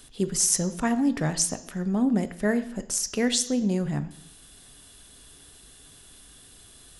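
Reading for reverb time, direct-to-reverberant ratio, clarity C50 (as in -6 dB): 0.70 s, 10.5 dB, 14.0 dB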